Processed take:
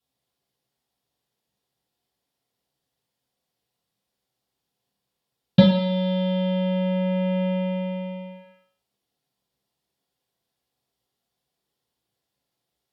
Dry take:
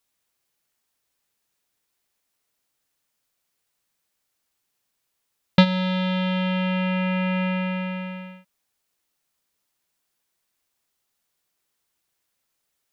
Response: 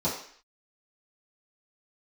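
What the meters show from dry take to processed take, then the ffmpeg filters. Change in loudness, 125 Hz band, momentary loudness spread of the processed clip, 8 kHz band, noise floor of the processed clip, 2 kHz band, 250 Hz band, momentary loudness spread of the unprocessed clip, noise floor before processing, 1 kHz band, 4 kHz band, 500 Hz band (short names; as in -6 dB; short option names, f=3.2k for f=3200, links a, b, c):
+0.5 dB, +1.0 dB, 15 LU, n/a, -83 dBFS, -10.0 dB, +1.0 dB, 13 LU, -77 dBFS, -5.5 dB, -3.0 dB, +5.0 dB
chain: -filter_complex "[1:a]atrim=start_sample=2205,asetrate=34398,aresample=44100[a];[0:a][a]afir=irnorm=-1:irlink=0,volume=-12.5dB"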